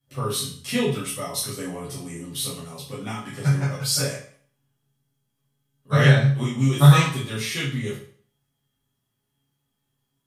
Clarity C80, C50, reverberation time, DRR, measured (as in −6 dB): 10.0 dB, 5.0 dB, 0.50 s, −10.0 dB